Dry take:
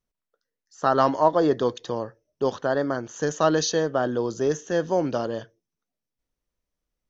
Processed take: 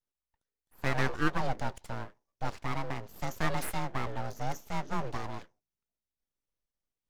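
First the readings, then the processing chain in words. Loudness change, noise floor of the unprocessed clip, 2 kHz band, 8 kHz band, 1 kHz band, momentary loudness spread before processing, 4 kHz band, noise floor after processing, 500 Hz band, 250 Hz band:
-11.5 dB, under -85 dBFS, -2.5 dB, no reading, -9.5 dB, 11 LU, -9.5 dB, under -85 dBFS, -17.5 dB, -11.5 dB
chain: frequency shift -28 Hz; full-wave rectifier; trim -7.5 dB

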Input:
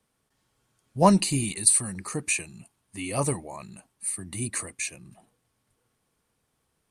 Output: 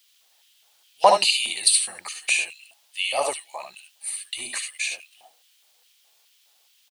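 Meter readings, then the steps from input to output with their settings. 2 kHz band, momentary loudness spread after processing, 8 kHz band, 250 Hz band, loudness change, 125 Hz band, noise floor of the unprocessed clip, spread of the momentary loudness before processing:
+8.5 dB, 18 LU, +0.5 dB, -21.0 dB, +2.5 dB, under -25 dB, -76 dBFS, 21 LU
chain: graphic EQ with 31 bands 100 Hz +11 dB, 800 Hz +8 dB, 3.15 kHz +4 dB, 6.3 kHz -3 dB; early reflections 62 ms -8.5 dB, 74 ms -6.5 dB; LFO high-pass square 2.4 Hz 600–2900 Hz; added noise blue -61 dBFS; peaking EQ 3.5 kHz +13.5 dB 1.9 oct; trim -5 dB

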